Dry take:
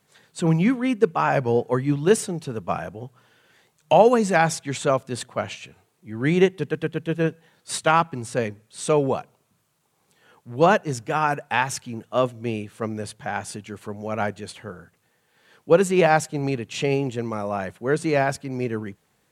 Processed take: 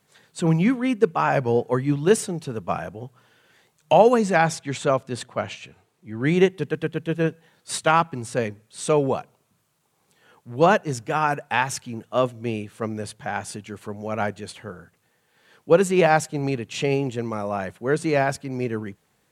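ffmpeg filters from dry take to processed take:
-filter_complex "[0:a]asettb=1/sr,asplit=3[s0][s1][s2];[s0]atrim=end=4.214[s3];[s1]atrim=start=4.21:end=6.28,asetpts=PTS-STARTPTS,afade=t=in:d=0.004:c=qsin,afade=t=out:st=2.066:d=0.004:c=qsin,highshelf=f=8700:g=-7.5[s4];[s2]atrim=start=6.276[s5];[s3][s4]acrossfade=d=0.004:c1=hsin:c2=qsin[s6];[s6][s5]acrossfade=d=0.004:c1=qsin:c2=hsin"

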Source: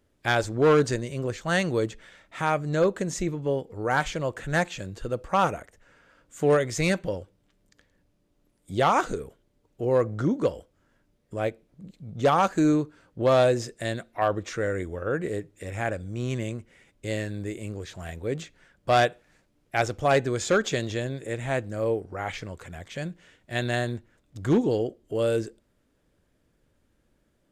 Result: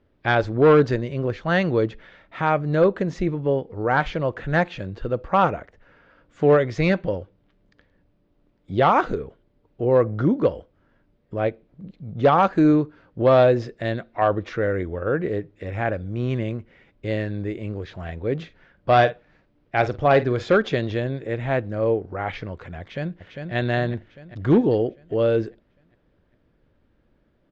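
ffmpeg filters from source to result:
-filter_complex "[0:a]asettb=1/sr,asplit=3[s0][s1][s2];[s0]atrim=end=18.364[s3];[s1]atrim=start=18.36:end=20.43,asetpts=PTS-STARTPTS,afade=t=in:d=0.004:c=qsin,afade=t=out:st=2.066:d=0.004:c=qsin,asplit=2[s4][s5];[s5]adelay=48,volume=0.2[s6];[s4][s6]amix=inputs=2:normalize=0,atrim=end_sample=91287[s7];[s2]atrim=start=20.426[s8];[s3][s7]acrossfade=d=0.004:c1=hsin:c2=qsin[s9];[s9][s8]acrossfade=d=0.004:c1=qsin:c2=hsin,asplit=2[s10][s11];[s11]afade=t=in:st=22.8:d=0.01,afade=t=out:st=23.54:d=0.01,aecho=0:1:400|800|1200|1600|2000|2400|2800:0.530884|0.291986|0.160593|0.0883259|0.0485792|0.0267186|0.0146952[s12];[s10][s12]amix=inputs=2:normalize=0,lowpass=f=5000:w=0.5412,lowpass=f=5000:w=1.3066,aemphasis=mode=reproduction:type=75kf,volume=1.78"

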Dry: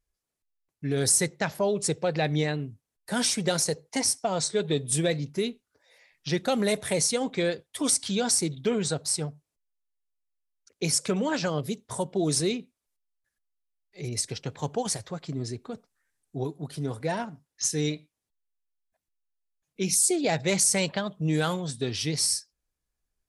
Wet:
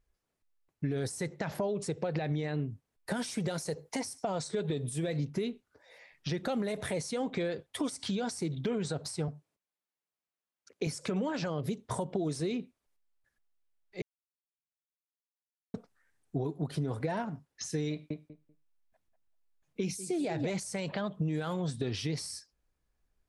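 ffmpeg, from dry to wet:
-filter_complex "[0:a]asettb=1/sr,asplit=3[s0][s1][s2];[s0]atrim=end=3.164[s3];[s1]atrim=start=3.16:end=5.26,asetpts=PTS-STARTPTS,afade=t=in:d=0.004:c=qsin,afade=t=out:st=2.096:d=0.004:c=qsin,highshelf=f=10000:g=11.5[s4];[s2]atrim=start=5.256[s5];[s3][s4]acrossfade=d=0.004:c1=hsin:c2=qsin[s6];[s6][s5]acrossfade=d=0.004:c1=qsin:c2=hsin,asettb=1/sr,asplit=3[s7][s8][s9];[s7]atrim=end=9.284[s10];[s8]atrim=start=9.28:end=10.87,asetpts=PTS-STARTPTS,afade=t=in:d=0.004:c=qsin,afade=t=out:st=1.586:d=0.004:c=qsin,highpass=130[s11];[s9]atrim=start=10.866[s12];[s10][s11]acrossfade=d=0.004:c1=hsin:c2=qsin[s13];[s13][s12]acrossfade=d=0.004:c1=qsin:c2=hsin,asettb=1/sr,asplit=3[s14][s15][s16];[s14]atrim=end=17.914[s17];[s15]atrim=start=17.91:end=20.5,asetpts=PTS-STARTPTS,afade=t=in:d=0.004:c=qsin,afade=t=out:st=2.586:d=0.004:c=qsin,asplit=2[s18][s19];[s19]adelay=193,lowpass=f=1500:p=1,volume=0.447,asplit=2[s20][s21];[s21]adelay=193,lowpass=f=1500:p=1,volume=0.18,asplit=2[s22][s23];[s23]adelay=193,lowpass=f=1500:p=1,volume=0.18[s24];[s18][s20][s22][s24]amix=inputs=4:normalize=0,atrim=end_sample=114219[s25];[s16]atrim=start=20.496[s26];[s17][s25]acrossfade=d=0.004:c1=hsin:c2=qsin[s27];[s27][s26]acrossfade=d=0.004:c1=qsin:c2=hsin,asplit=3[s28][s29][s30];[s28]atrim=end=14.02,asetpts=PTS-STARTPTS,afade=t=out:st=14.016:d=0.004:c=hsin[s31];[s29]atrim=start=14.02:end=15.74,asetpts=PTS-STARTPTS,volume=0[s32];[s30]atrim=start=15.74,asetpts=PTS-STARTPTS,afade=t=in:d=0.004:c=hsin[s33];[s31][s32][s33]concat=n=3:v=0:a=1,alimiter=limit=0.0668:level=0:latency=1:release=79,acompressor=threshold=0.0178:ratio=6,highshelf=f=3700:g=-11.5,volume=2"

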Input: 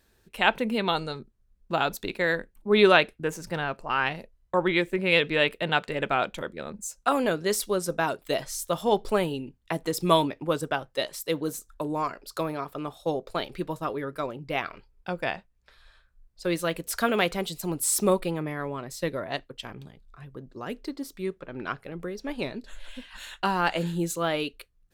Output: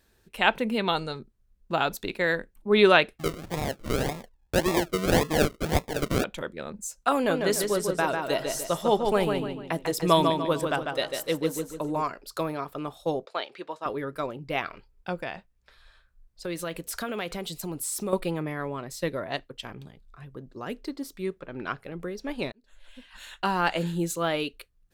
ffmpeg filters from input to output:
-filter_complex "[0:a]asettb=1/sr,asplit=3[s0][s1][s2];[s0]atrim=end=3.184[s3];[s1]atrim=start=3.18:end=6.24,asetpts=PTS-STARTPTS,afade=t=in:d=0.004:c=qsin,afade=t=out:st=3.056:d=0.004:c=qsin,acrusher=samples=41:mix=1:aa=0.000001:lfo=1:lforange=24.6:lforate=1.8[s4];[s2]atrim=start=6.236[s5];[s3][s4]acrossfade=d=0.004:c1=hsin:c2=qsin[s6];[s6][s5]acrossfade=d=0.004:c1=qsin:c2=hsin,asettb=1/sr,asplit=3[s7][s8][s9];[s7]atrim=end=7.154[s10];[s8]atrim=start=7.15:end=12.02,asetpts=PTS-STARTPTS,afade=t=in:d=0.004:c=qsin,afade=t=out:st=4.866:d=0.004:c=qsin,asplit=2[s11][s12];[s12]adelay=147,lowpass=f=4900:p=1,volume=0.596,asplit=2[s13][s14];[s14]adelay=147,lowpass=f=4900:p=1,volume=0.41,asplit=2[s15][s16];[s16]adelay=147,lowpass=f=4900:p=1,volume=0.41,asplit=2[s17][s18];[s18]adelay=147,lowpass=f=4900:p=1,volume=0.41,asplit=2[s19][s20];[s20]adelay=147,lowpass=f=4900:p=1,volume=0.41[s21];[s11][s13][s15][s17][s19][s21]amix=inputs=6:normalize=0,atrim=end_sample=214767[s22];[s9]atrim=start=12.016[s23];[s10][s22]acrossfade=d=0.004:c1=hsin:c2=qsin[s24];[s24][s23]acrossfade=d=0.004:c1=qsin:c2=hsin,asettb=1/sr,asplit=3[s25][s26][s27];[s25]atrim=end=13.254[s28];[s26]atrim=start=13.25:end=13.86,asetpts=PTS-STARTPTS,afade=t=in:d=0.004:c=qsin,afade=t=out:st=0.606:d=0.004:c=qsin,highpass=520,lowpass=5200[s29];[s27]atrim=start=13.856[s30];[s28][s29]acrossfade=d=0.004:c1=hsin:c2=qsin[s31];[s31][s30]acrossfade=d=0.004:c1=qsin:c2=hsin,asettb=1/sr,asplit=3[s32][s33][s34];[s32]atrim=end=15.214[s35];[s33]atrim=start=15.21:end=18.13,asetpts=PTS-STARTPTS,afade=t=in:d=0.004:c=qsin,afade=t=out:st=2.916:d=0.004:c=qsin,acompressor=threshold=0.0316:ratio=3:attack=3.2:release=140:knee=1:detection=peak[s36];[s34]atrim=start=18.126[s37];[s35][s36]acrossfade=d=0.004:c1=hsin:c2=qsin[s38];[s38][s37]acrossfade=d=0.004:c1=qsin:c2=hsin,asplit=2[s39][s40];[s39]atrim=end=22.52,asetpts=PTS-STARTPTS,afade=t=out:st=22.516:d=0.004:c=hsin[s41];[s40]atrim=start=22.52,asetpts=PTS-STARTPTS,afade=t=in:d=1.03[s42];[s41][s42]concat=n=2:v=0:a=1"

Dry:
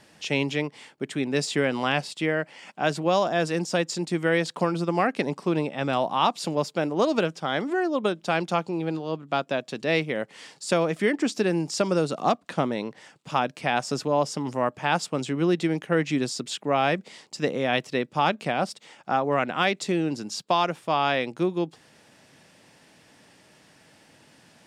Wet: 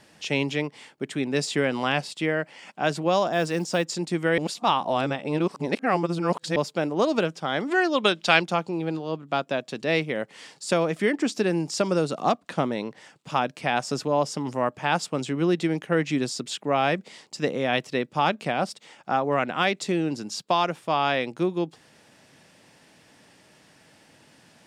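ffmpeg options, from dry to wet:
-filter_complex "[0:a]asettb=1/sr,asplit=3[s0][s1][s2];[s0]atrim=end=3.334[s3];[s1]atrim=start=3.33:end=3.85,asetpts=PTS-STARTPTS,afade=t=in:d=0.004:c=qsin,afade=t=out:st=0.516:d=0.004:c=qsin,acrusher=bits=8:mode=log:mix=0:aa=0.000001[s4];[s2]atrim=start=3.846[s5];[s3][s4]acrossfade=d=0.004:c1=hsin:c2=qsin[s6];[s6][s5]acrossfade=d=0.004:c1=qsin:c2=hsin,asplit=3[s7][s8][s9];[s7]afade=t=out:st=7.7:d=0.02[s10];[s8]equalizer=f=3400:w=0.42:g=12.5,afade=t=in:st=7.7:d=0.02,afade=t=out:st=8.39:d=0.02[s11];[s9]afade=t=in:st=8.39:d=0.02[s12];[s10][s11][s12]amix=inputs=3:normalize=0,asplit=3[s13][s14][s15];[s13]atrim=end=4.382[s16];[s14]atrim=start=4.378:end=6.562,asetpts=PTS-STARTPTS,areverse[s17];[s15]atrim=start=6.558[s18];[s16][s17]acrossfade=d=0.004:c1=hsin:c2=hsin[s19];[s19][s18]acrossfade=d=0.004:c1=hsin:c2=hsin"

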